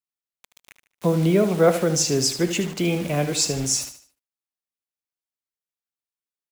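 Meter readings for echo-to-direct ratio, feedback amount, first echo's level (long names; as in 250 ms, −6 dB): −10.5 dB, 36%, −11.0 dB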